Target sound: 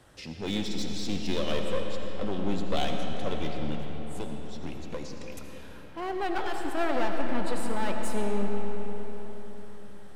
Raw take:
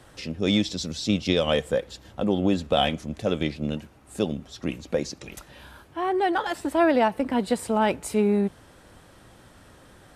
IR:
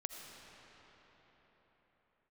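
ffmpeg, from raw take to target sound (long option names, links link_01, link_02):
-filter_complex "[0:a]aeval=exprs='clip(val(0),-1,0.0376)':channel_layout=same,asettb=1/sr,asplit=3[link_01][link_02][link_03];[link_01]atrim=end=4.184[link_04];[link_02]atrim=start=4.18:end=5.12,asetpts=PTS-STARTPTS,afade=type=in:duration=0.004:curve=qsin,afade=type=out:start_time=0.936:duration=0.004:curve=qsin,acrossover=split=2100|5900[link_05][link_06][link_07];[link_05]acompressor=threshold=-28dB:ratio=4[link_08];[link_06]acompressor=threshold=-45dB:ratio=4[link_09];[link_07]acompressor=threshold=-52dB:ratio=4[link_10];[link_08][link_09][link_10]amix=inputs=3:normalize=0[link_11];[link_03]atrim=start=5.116[link_12];[link_04][link_11]acrossfade=duration=0.004:curve1=hsin:curve2=qsin[link_13];[link_13][link_12]acrossfade=duration=0.004:curve1=qsin:curve2=hsin[link_14];[1:a]atrim=start_sample=2205[link_15];[link_14][link_15]afir=irnorm=-1:irlink=0,volume=-2.5dB"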